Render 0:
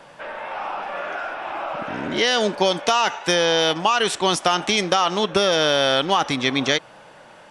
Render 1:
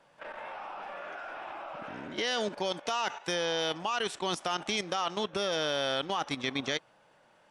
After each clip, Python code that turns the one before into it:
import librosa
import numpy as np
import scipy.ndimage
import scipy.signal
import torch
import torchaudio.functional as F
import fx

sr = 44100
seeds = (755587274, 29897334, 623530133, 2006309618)

y = fx.level_steps(x, sr, step_db=11)
y = y * librosa.db_to_amplitude(-8.5)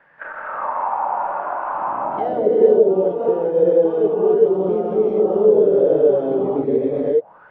y = fx.rev_gated(x, sr, seeds[0], gate_ms=440, shape='rising', drr_db=-7.5)
y = fx.envelope_lowpass(y, sr, base_hz=440.0, top_hz=1800.0, q=6.0, full_db=-22.0, direction='down')
y = y * librosa.db_to_amplitude(2.5)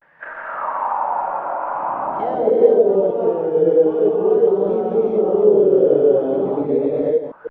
y = fx.reverse_delay(x, sr, ms=156, wet_db=-8.5)
y = fx.vibrato(y, sr, rate_hz=0.47, depth_cents=76.0)